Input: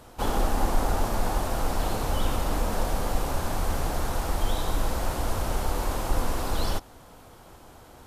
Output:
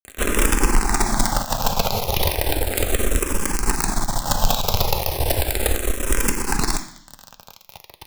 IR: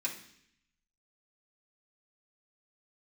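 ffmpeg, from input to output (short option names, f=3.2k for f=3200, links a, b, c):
-filter_complex "[0:a]aeval=exprs='0.282*(cos(1*acos(clip(val(0)/0.282,-1,1)))-cos(1*PI/2))+0.0112*(cos(2*acos(clip(val(0)/0.282,-1,1)))-cos(2*PI/2))+0.01*(cos(8*acos(clip(val(0)/0.282,-1,1)))-cos(8*PI/2))':c=same,adynamicequalizer=threshold=0.00447:dfrequency=1600:dqfactor=1:tfrequency=1600:tqfactor=1:attack=5:release=100:ratio=0.375:range=3:mode=cutabove:tftype=bell,acrusher=bits=4:dc=4:mix=0:aa=0.000001,asplit=2[a][b];[1:a]atrim=start_sample=2205,lowshelf=f=430:g=-9[c];[b][c]afir=irnorm=-1:irlink=0,volume=-6.5dB[d];[a][d]amix=inputs=2:normalize=0,alimiter=level_in=16dB:limit=-1dB:release=50:level=0:latency=1,asplit=2[e][f];[f]afreqshift=-0.35[g];[e][g]amix=inputs=2:normalize=1,volume=-2.5dB"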